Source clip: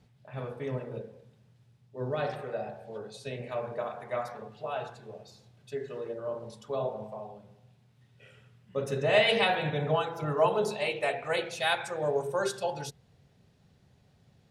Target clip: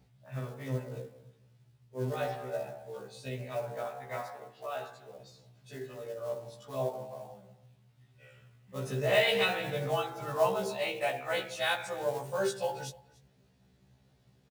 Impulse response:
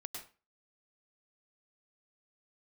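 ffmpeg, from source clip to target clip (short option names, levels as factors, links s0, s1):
-filter_complex "[0:a]asettb=1/sr,asplit=3[s0][s1][s2];[s0]atrim=end=4.214[s3];[s1]atrim=start=4.21:end=5.2,asetpts=PTS-STARTPTS,afade=t=in:d=0.004:c=qsin,afade=t=out:st=0.986:d=0.004:c=qsin,highpass=f=320:p=1[s4];[s2]atrim=start=5.196[s5];[s3][s4]acrossfade=d=0.004:c1=hsin:c2=qsin[s6];[s6][s5]acrossfade=d=0.004:c1=qsin:c2=hsin,acrusher=bits=5:mode=log:mix=0:aa=0.000001,aecho=1:1:291:0.0708,afftfilt=real='re*1.73*eq(mod(b,3),0)':imag='im*1.73*eq(mod(b,3),0)':win_size=2048:overlap=0.75"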